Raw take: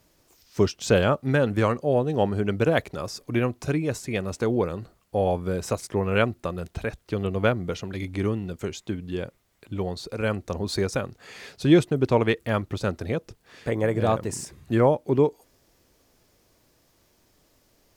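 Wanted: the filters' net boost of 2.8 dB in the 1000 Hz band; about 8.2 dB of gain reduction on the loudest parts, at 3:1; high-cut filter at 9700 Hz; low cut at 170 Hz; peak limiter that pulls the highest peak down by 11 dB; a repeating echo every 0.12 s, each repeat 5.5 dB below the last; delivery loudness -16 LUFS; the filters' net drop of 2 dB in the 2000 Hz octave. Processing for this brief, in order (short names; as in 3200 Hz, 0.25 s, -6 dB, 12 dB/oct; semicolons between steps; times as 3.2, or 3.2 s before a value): HPF 170 Hz; LPF 9700 Hz; bell 1000 Hz +5 dB; bell 2000 Hz -5 dB; compressor 3:1, threshold -23 dBFS; limiter -22 dBFS; feedback echo 0.12 s, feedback 53%, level -5.5 dB; gain +17 dB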